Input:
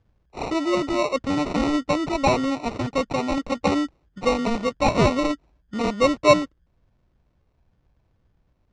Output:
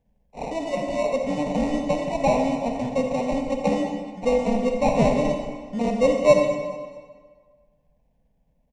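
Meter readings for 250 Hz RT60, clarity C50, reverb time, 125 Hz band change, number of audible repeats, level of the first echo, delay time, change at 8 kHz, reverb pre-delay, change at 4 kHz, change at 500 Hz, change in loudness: 1.5 s, 3.5 dB, 1.6 s, -1.0 dB, 2, -16.5 dB, 0.213 s, -3.5 dB, 36 ms, -7.5 dB, +2.0 dB, -0.5 dB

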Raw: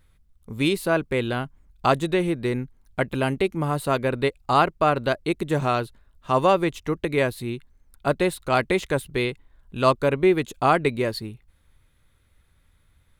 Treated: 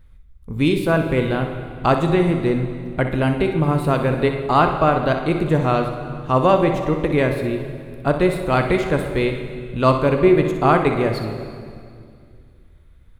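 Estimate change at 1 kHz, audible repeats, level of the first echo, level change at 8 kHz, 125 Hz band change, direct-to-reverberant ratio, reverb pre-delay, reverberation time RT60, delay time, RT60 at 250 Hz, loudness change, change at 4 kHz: +3.5 dB, 1, -10.5 dB, n/a, +8.0 dB, 4.5 dB, 3 ms, 2.2 s, 62 ms, 2.7 s, +4.5 dB, 0.0 dB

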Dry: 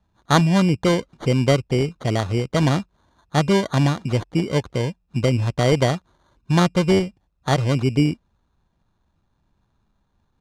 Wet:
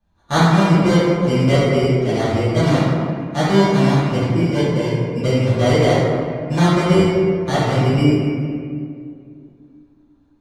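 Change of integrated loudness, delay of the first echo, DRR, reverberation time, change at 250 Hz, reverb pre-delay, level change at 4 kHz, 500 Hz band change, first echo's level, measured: +4.0 dB, none, -13.5 dB, 2.3 s, +5.0 dB, 3 ms, +2.0 dB, +5.5 dB, none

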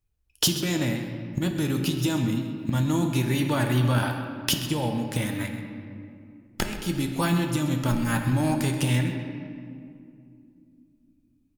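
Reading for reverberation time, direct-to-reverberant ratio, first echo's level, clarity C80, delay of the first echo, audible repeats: 2.5 s, 3.0 dB, -13.5 dB, 6.0 dB, 0.13 s, 1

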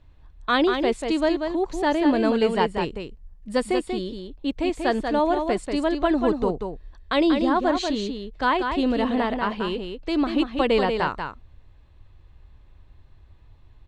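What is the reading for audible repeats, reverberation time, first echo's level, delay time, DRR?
1, none, -6.0 dB, 0.188 s, none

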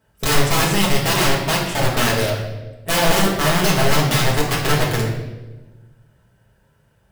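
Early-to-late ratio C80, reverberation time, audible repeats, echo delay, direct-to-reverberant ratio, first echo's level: 6.0 dB, 1.2 s, none, none, -5.0 dB, none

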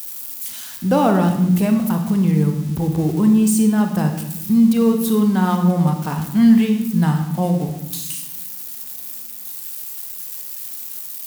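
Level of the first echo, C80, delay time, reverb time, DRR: none, 9.0 dB, none, 0.90 s, 4.5 dB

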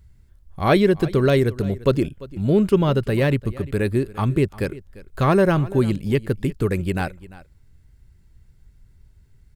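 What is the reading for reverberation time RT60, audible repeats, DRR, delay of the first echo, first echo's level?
none, 1, none, 0.346 s, -19.0 dB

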